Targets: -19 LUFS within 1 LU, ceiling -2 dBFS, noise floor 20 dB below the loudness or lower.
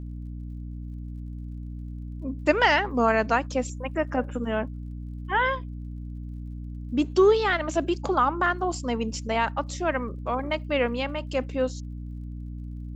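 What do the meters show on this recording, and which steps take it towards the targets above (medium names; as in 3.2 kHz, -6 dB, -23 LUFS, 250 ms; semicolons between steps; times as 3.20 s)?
tick rate 40 per s; hum 60 Hz; highest harmonic 300 Hz; hum level -33 dBFS; loudness -25.5 LUFS; peak level -7.5 dBFS; loudness target -19.0 LUFS
-> de-click; hum notches 60/120/180/240/300 Hz; trim +6.5 dB; peak limiter -2 dBFS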